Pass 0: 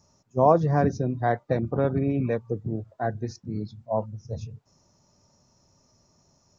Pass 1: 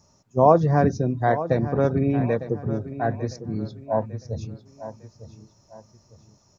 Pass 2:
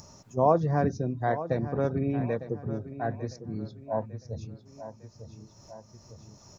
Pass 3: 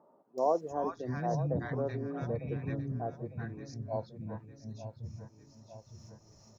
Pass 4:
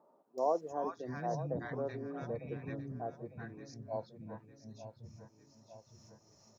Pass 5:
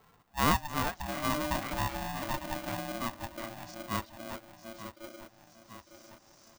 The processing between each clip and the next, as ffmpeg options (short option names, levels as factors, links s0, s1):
-af "aecho=1:1:903|1806|2709:0.224|0.0784|0.0274,volume=1.41"
-af "acompressor=mode=upward:threshold=0.0282:ratio=2.5,volume=0.473"
-filter_complex "[0:a]acrossover=split=270|1100[s0][s1][s2];[s2]adelay=380[s3];[s0]adelay=710[s4];[s4][s1][s3]amix=inputs=3:normalize=0,volume=0.596"
-af "highpass=f=220:p=1,volume=0.75"
-af "aeval=exprs='val(0)*sgn(sin(2*PI*450*n/s))':c=same,volume=1.78"